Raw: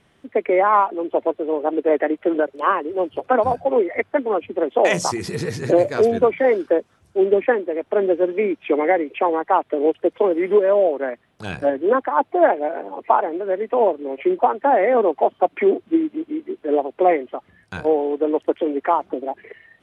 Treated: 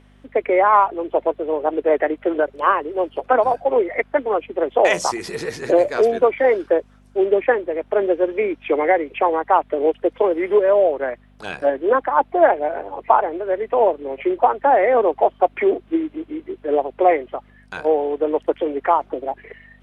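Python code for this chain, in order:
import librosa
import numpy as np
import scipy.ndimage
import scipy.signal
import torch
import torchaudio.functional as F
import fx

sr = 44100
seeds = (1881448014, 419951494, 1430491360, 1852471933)

y = fx.add_hum(x, sr, base_hz=50, snr_db=20)
y = fx.bass_treble(y, sr, bass_db=-15, treble_db=-3)
y = y * 10.0 ** (2.0 / 20.0)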